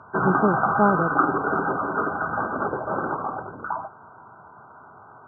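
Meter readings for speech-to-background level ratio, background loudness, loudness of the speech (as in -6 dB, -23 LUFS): 0.5 dB, -24.5 LUFS, -24.0 LUFS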